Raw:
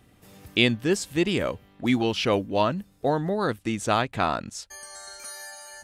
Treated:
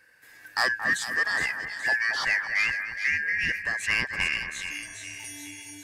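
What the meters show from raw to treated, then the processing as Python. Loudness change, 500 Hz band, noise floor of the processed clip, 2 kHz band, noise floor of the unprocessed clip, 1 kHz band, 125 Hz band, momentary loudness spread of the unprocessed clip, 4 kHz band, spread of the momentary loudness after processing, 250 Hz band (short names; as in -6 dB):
-0.5 dB, -17.5 dB, -52 dBFS, +9.5 dB, -58 dBFS, -8.0 dB, -16.0 dB, 16 LU, -3.0 dB, 13 LU, -19.5 dB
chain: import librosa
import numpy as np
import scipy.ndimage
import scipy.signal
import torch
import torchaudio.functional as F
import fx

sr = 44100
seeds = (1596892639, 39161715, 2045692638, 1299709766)

y = fx.band_shuffle(x, sr, order='2143')
y = 10.0 ** (-13.0 / 20.0) * np.tanh(y / 10.0 ** (-13.0 / 20.0))
y = fx.echo_split(y, sr, split_hz=2100.0, low_ms=226, high_ms=419, feedback_pct=52, wet_db=-7.5)
y = y * 10.0 ** (-2.0 / 20.0)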